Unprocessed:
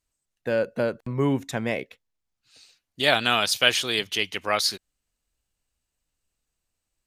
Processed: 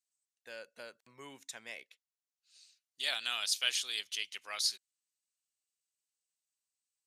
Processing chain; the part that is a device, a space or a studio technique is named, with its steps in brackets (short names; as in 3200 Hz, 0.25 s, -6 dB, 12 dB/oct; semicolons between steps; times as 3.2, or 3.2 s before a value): piezo pickup straight into a mixer (LPF 8300 Hz 12 dB/oct; differentiator); gain -3.5 dB